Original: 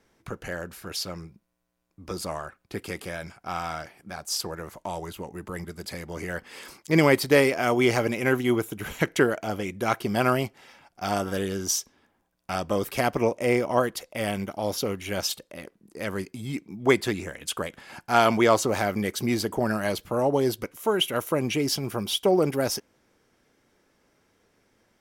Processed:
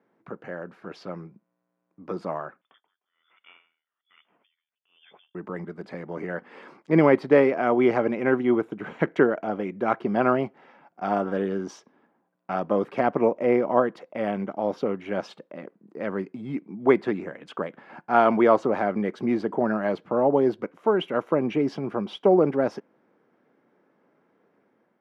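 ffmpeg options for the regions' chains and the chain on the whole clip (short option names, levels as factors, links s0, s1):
-filter_complex "[0:a]asettb=1/sr,asplit=3[s0][s1][s2];[s0]atrim=end=2.614[s3];[s1]atrim=start=2.61:end=5.35,asetpts=PTS-STARTPTS,afade=t=in:d=0.004:c=qsin,afade=t=out:st=2.736:d=0.004:c=qsin,acompressor=threshold=0.00447:ratio=2:attack=3.2:release=140:knee=1:detection=peak,lowpass=f=3100:t=q:w=0.5098,lowpass=f=3100:t=q:w=0.6013,lowpass=f=3100:t=q:w=0.9,lowpass=f=3100:t=q:w=2.563,afreqshift=-3600,aeval=exprs='val(0)*pow(10,-35*(0.5-0.5*cos(2*PI*1.2*n/s))/20)':c=same[s4];[s2]atrim=start=5.346[s5];[s3][s4]acrossfade=d=0.004:c1=hsin:c2=qsin[s6];[s6][s5]acrossfade=d=0.004:c1=qsin:c2=hsin,lowpass=1400,dynaudnorm=f=560:g=3:m=1.58,highpass=f=160:w=0.5412,highpass=f=160:w=1.3066,volume=0.891"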